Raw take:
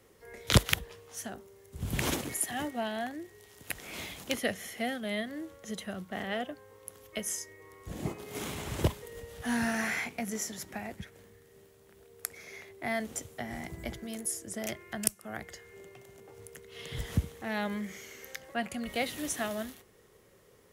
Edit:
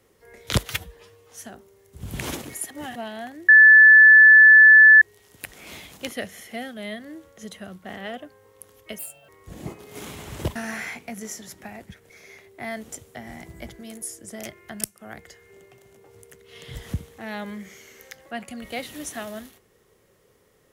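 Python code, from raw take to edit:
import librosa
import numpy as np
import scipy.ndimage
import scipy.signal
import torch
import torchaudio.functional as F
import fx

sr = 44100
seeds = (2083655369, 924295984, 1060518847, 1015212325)

y = fx.edit(x, sr, fx.stretch_span(start_s=0.69, length_s=0.41, factor=1.5),
    fx.reverse_span(start_s=2.5, length_s=0.25),
    fx.insert_tone(at_s=3.28, length_s=1.53, hz=1740.0, db=-7.0),
    fx.speed_span(start_s=7.25, length_s=0.43, speed=1.43),
    fx.cut(start_s=8.95, length_s=0.71),
    fx.cut(start_s=11.2, length_s=1.13), tone=tone)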